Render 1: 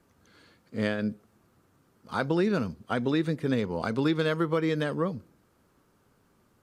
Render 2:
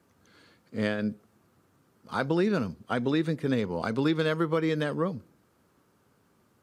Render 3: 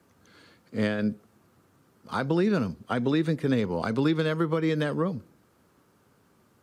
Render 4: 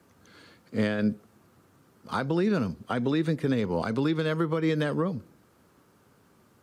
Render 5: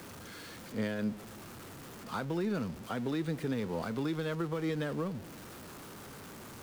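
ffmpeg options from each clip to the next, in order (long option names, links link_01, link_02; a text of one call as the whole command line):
ffmpeg -i in.wav -af "highpass=74" out.wav
ffmpeg -i in.wav -filter_complex "[0:a]acrossover=split=290[link_01][link_02];[link_02]acompressor=threshold=-28dB:ratio=6[link_03];[link_01][link_03]amix=inputs=2:normalize=0,volume=3dB" out.wav
ffmpeg -i in.wav -af "alimiter=limit=-18dB:level=0:latency=1:release=261,volume=2dB" out.wav
ffmpeg -i in.wav -af "aeval=exprs='val(0)+0.5*0.0211*sgn(val(0))':channel_layout=same,volume=-9dB" out.wav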